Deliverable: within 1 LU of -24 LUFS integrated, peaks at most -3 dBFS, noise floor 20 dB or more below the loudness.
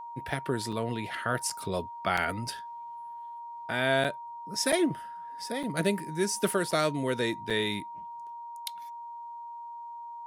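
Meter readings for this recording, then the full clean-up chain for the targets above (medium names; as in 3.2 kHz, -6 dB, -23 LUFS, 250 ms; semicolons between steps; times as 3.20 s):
dropouts 8; longest dropout 5.4 ms; steady tone 940 Hz; tone level -39 dBFS; loudness -30.5 LUFS; peak level -12.0 dBFS; loudness target -24.0 LUFS
-> interpolate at 0.72/1.50/2.17/4.04/4.72/5.63/6.71/7.50 s, 5.4 ms; band-stop 940 Hz, Q 30; trim +6.5 dB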